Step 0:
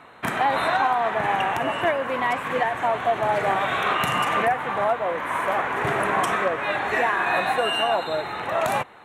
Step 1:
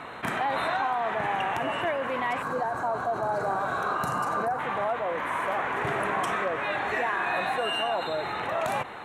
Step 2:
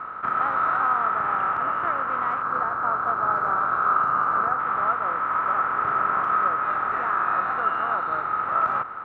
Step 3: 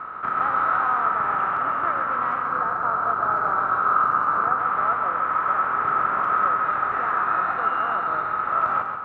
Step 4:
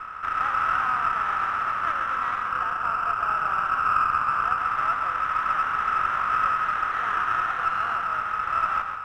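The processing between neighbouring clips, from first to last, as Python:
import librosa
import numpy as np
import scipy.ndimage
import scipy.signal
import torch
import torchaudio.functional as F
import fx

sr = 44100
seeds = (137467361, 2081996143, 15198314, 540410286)

y1 = fx.spec_box(x, sr, start_s=2.42, length_s=2.17, low_hz=1700.0, high_hz=3800.0, gain_db=-15)
y1 = fx.high_shelf(y1, sr, hz=11000.0, db=-6.0)
y1 = fx.env_flatten(y1, sr, amount_pct=50)
y1 = y1 * 10.0 ** (-7.5 / 20.0)
y2 = fx.spec_flatten(y1, sr, power=0.53)
y2 = fx.lowpass_res(y2, sr, hz=1300.0, q=16.0)
y2 = y2 * 10.0 ** (-6.0 / 20.0)
y3 = fx.echo_feedback(y2, sr, ms=136, feedback_pct=33, wet_db=-6.0)
y4 = fx.bandpass_q(y3, sr, hz=2300.0, q=1.5)
y4 = fx.air_absorb(y4, sr, metres=350.0)
y4 = fx.running_max(y4, sr, window=3)
y4 = y4 * 10.0 ** (6.5 / 20.0)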